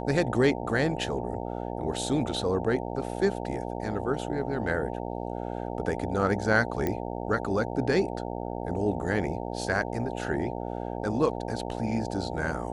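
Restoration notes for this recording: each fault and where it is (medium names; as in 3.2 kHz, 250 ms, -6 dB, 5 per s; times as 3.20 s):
buzz 60 Hz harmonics 15 -34 dBFS
6.87 s: pop -15 dBFS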